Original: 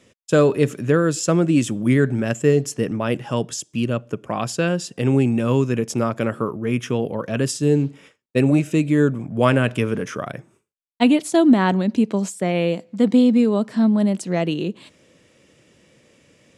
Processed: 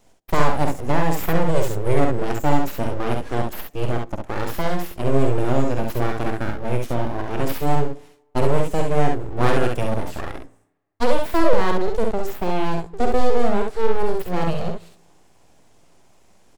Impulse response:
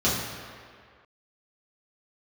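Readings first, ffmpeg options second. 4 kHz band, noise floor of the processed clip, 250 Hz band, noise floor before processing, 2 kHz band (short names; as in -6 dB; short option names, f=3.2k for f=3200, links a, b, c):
-3.5 dB, -56 dBFS, -8.0 dB, -62 dBFS, -2.0 dB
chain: -filter_complex "[0:a]equalizer=f=2.5k:t=o:w=1.7:g=-9,aeval=exprs='abs(val(0))':c=same,aecho=1:1:49|67:0.447|0.596,asplit=2[a][b];[1:a]atrim=start_sample=2205,asetrate=66150,aresample=44100,adelay=62[c];[b][c]afir=irnorm=-1:irlink=0,volume=-38.5dB[d];[a][d]amix=inputs=2:normalize=0"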